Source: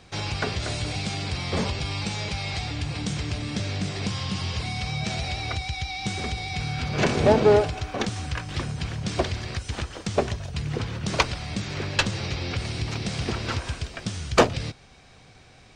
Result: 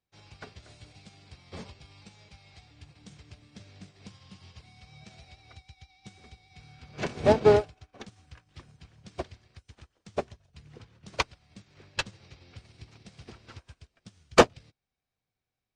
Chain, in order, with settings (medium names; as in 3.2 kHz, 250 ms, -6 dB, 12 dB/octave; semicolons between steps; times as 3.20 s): upward expansion 2.5:1, over -38 dBFS; trim +1.5 dB